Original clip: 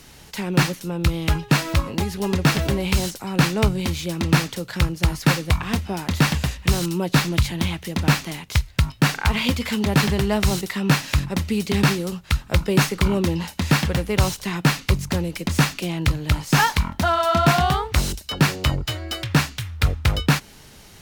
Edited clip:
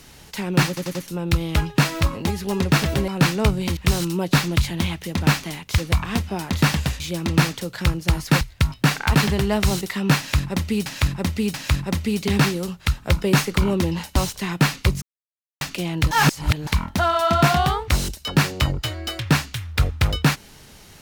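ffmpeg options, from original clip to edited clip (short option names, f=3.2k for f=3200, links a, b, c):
-filter_complex "[0:a]asplit=17[a][b][c][d][e][f][g][h][i][j][k][l][m][n][o][p][q];[a]atrim=end=0.772[r];[b]atrim=start=0.678:end=0.772[s];[c]atrim=start=0.678:end=0.772[t];[d]atrim=start=0.678:end=2.812[u];[e]atrim=start=3.258:end=3.952[v];[f]atrim=start=6.578:end=8.592[w];[g]atrim=start=5.358:end=6.582[x];[h]atrim=start=3.948:end=5.362[y];[i]atrim=start=8.588:end=9.332[z];[j]atrim=start=9.948:end=11.662[aa];[k]atrim=start=10.978:end=11.662[ab];[l]atrim=start=10.978:end=13.602[ac];[m]atrim=start=14.198:end=15.06,asetpts=PTS-STARTPTS,afade=t=out:st=0.858:d=0.004:c=hsin[ad];[n]atrim=start=15.06:end=15.65,asetpts=PTS-STARTPTS,volume=0[ae];[o]atrim=start=15.65:end=16.152,asetpts=PTS-STARTPTS,afade=t=in:d=0.004:c=hsin[af];[p]atrim=start=16.148:end=16.712,asetpts=PTS-STARTPTS,areverse[ag];[q]atrim=start=16.708[ah];[r][s]acrossfade=d=0.004:c1=hsin:c2=hsin[ai];[ai][t]acrossfade=d=0.004:c1=hsin:c2=hsin[aj];[aj][u]acrossfade=d=0.004:c1=hsin:c2=hsin[ak];[ak][v]acrossfade=d=0.004:c1=hsin:c2=hsin[al];[al][w]acrossfade=d=0.004:c1=hsin:c2=hsin[am];[am][x]acrossfade=d=0.004:c1=hsin:c2=hsin[an];[an][y]acrossfade=d=0.004:c1=hsin:c2=hsin[ao];[ao][z]acrossfade=d=0.004:c1=hsin:c2=hsin[ap];[ap][aa]acrossfade=d=0.004:c1=hsin:c2=hsin[aq];[aq][ab]acrossfade=d=0.004:c1=hsin:c2=hsin[ar];[ar][ac]acrossfade=d=0.004:c1=hsin:c2=hsin[as];[ad][ae][af]concat=n=3:v=0:a=1[at];[as][at]acrossfade=d=0.004:c1=hsin:c2=hsin[au];[au][ag]acrossfade=d=0.004:c1=hsin:c2=hsin[av];[av][ah]acrossfade=d=0.004:c1=hsin:c2=hsin"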